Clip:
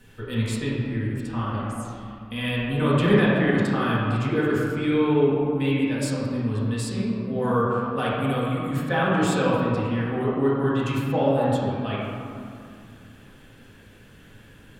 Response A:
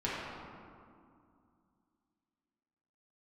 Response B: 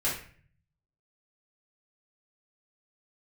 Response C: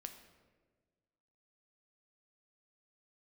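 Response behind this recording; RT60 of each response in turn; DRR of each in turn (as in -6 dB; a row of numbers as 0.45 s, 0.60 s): A; 2.4 s, 0.45 s, 1.5 s; -9.0 dB, -9.0 dB, 6.0 dB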